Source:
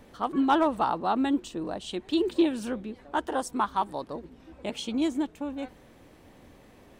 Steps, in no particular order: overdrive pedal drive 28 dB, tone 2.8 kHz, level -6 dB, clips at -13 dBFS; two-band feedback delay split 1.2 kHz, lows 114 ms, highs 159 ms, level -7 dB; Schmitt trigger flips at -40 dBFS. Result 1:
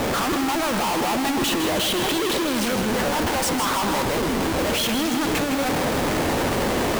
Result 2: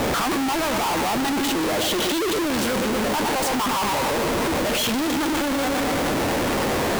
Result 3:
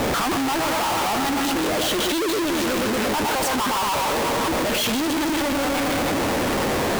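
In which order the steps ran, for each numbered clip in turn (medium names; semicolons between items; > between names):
overdrive pedal > Schmitt trigger > two-band feedback delay; overdrive pedal > two-band feedback delay > Schmitt trigger; two-band feedback delay > overdrive pedal > Schmitt trigger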